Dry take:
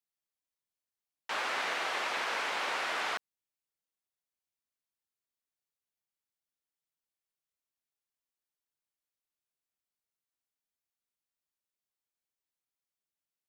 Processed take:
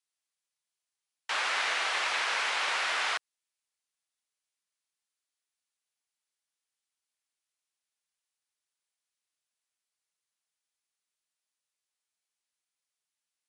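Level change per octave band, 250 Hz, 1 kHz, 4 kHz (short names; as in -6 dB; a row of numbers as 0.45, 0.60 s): -6.0, +2.0, +6.0 dB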